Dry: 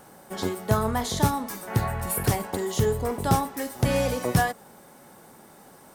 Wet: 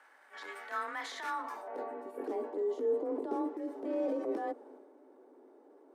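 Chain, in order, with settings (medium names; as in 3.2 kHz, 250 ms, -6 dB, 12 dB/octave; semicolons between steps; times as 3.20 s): elliptic high-pass 230 Hz, stop band 40 dB; frequency shift +30 Hz; transient shaper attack -9 dB, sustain +6 dB; band-pass sweep 1.8 kHz -> 370 Hz, 1.27–1.93 s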